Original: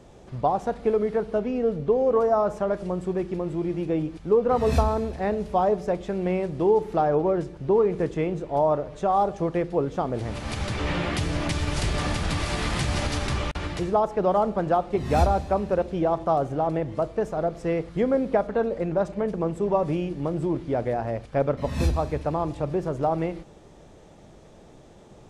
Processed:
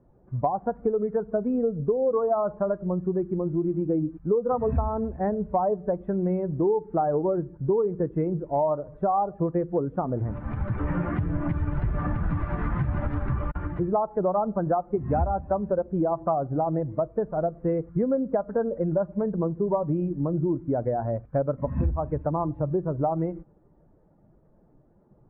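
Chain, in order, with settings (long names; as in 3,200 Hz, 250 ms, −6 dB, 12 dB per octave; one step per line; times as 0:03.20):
spectral dynamics exaggerated over time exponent 1.5
inverse Chebyshev low-pass filter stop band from 7,200 Hz, stop band 80 dB
downward compressor 4 to 1, threshold −31 dBFS, peak gain reduction 12.5 dB
level +8.5 dB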